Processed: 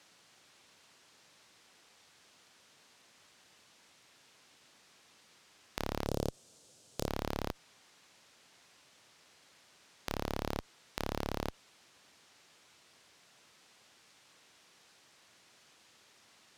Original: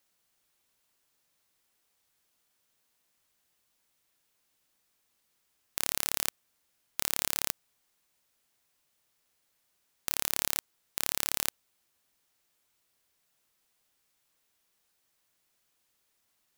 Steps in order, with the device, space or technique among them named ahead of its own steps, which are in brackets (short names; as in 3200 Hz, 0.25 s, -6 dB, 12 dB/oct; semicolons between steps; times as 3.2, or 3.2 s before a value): valve radio (BPF 100–6000 Hz; tube stage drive 37 dB, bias 0.4; core saturation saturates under 670 Hz); 6.06–7.08 graphic EQ 125/500/1000/2000/8000 Hz +7/+7/-5/-10/+8 dB; gain +18 dB